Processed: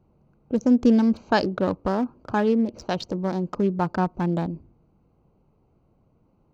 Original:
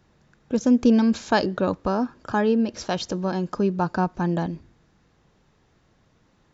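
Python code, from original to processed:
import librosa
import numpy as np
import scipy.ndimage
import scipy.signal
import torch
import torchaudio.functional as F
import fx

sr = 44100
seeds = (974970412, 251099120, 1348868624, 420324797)

y = fx.wiener(x, sr, points=25)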